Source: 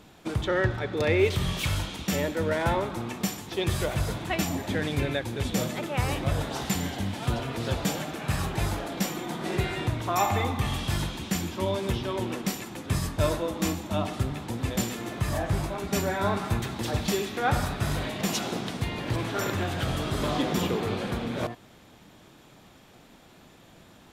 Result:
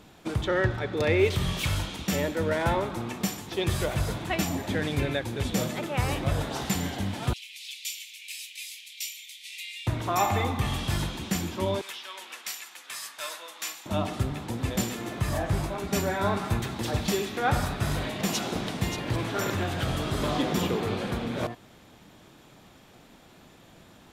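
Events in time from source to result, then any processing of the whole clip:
7.33–9.87 steep high-pass 2200 Hz 72 dB/oct
11.81–13.86 HPF 1500 Hz
17.96–18.38 echo throw 0.58 s, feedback 30%, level -8 dB

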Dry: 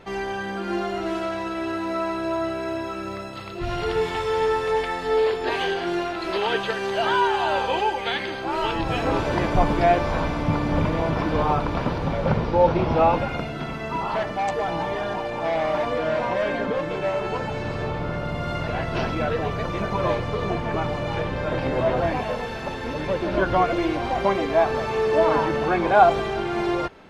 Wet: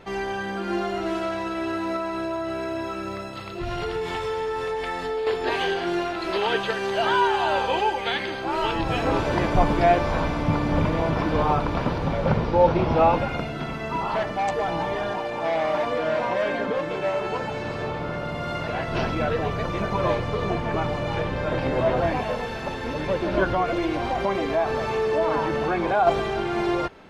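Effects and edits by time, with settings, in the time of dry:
1.96–5.27 compressor, threshold -24 dBFS
15.11–18.89 low shelf 110 Hz -9.5 dB
23.45–26.07 compressor 2:1, threshold -21 dBFS

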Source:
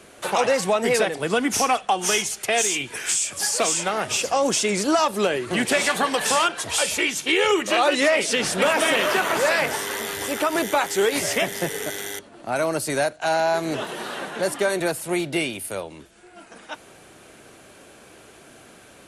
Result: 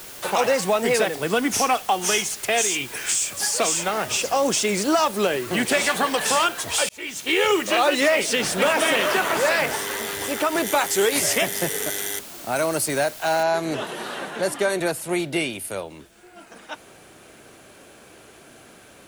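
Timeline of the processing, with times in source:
6.89–7.38 fade in
10.66–12.86 high shelf 5900 Hz +8 dB
13.43 noise floor step -40 dB -65 dB

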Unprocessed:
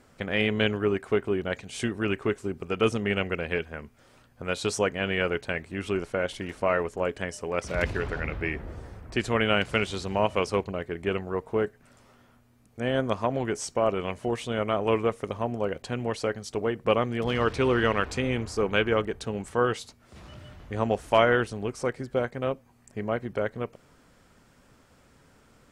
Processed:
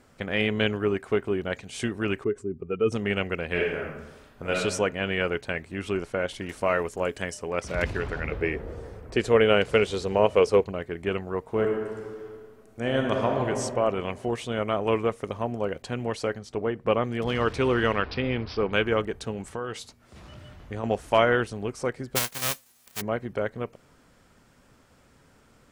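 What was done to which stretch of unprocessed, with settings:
2.24–2.92 spectral contrast raised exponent 1.7
3.47–4.56 reverb throw, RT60 1 s, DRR -3 dB
6.49–7.34 high shelf 4500 Hz +9 dB
8.31–10.64 bell 460 Hz +10.5 dB 0.53 oct
11.47–13.48 reverb throw, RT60 2.1 s, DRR 1 dB
16.38–17.04 high shelf 4400 Hz -11.5 dB
17.96–18.73 careless resampling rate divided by 4×, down none, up filtered
19.31–20.84 compressor, threshold -28 dBFS
22.15–23 spectral whitening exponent 0.1

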